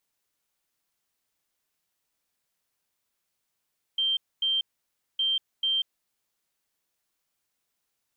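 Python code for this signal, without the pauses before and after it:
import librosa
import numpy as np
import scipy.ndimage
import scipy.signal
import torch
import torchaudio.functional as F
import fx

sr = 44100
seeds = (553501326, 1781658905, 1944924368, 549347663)

y = fx.beep_pattern(sr, wave='sine', hz=3150.0, on_s=0.19, off_s=0.25, beeps=2, pause_s=0.58, groups=2, level_db=-22.5)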